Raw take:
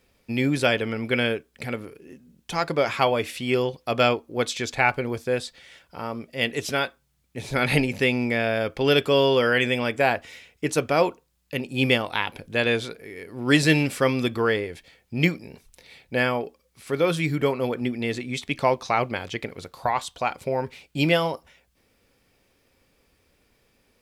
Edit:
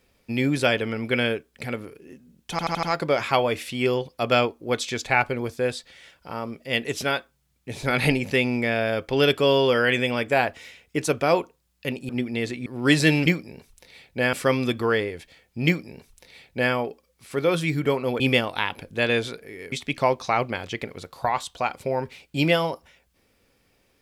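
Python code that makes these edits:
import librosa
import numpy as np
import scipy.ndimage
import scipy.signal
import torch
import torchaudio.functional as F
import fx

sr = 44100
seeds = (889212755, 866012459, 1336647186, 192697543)

y = fx.edit(x, sr, fx.stutter(start_s=2.51, slice_s=0.08, count=5),
    fx.swap(start_s=11.77, length_s=1.52, other_s=17.76, other_length_s=0.57),
    fx.duplicate(start_s=15.22, length_s=1.07, to_s=13.89), tone=tone)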